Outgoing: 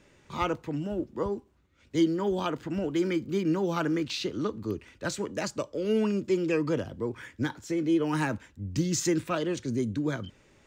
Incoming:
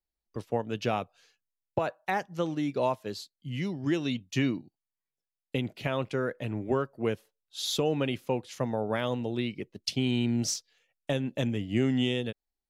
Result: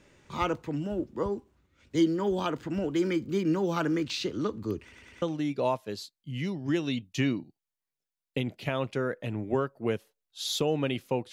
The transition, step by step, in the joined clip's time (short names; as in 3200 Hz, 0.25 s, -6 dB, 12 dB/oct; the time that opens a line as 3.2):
outgoing
4.82 stutter in place 0.10 s, 4 plays
5.22 switch to incoming from 2.4 s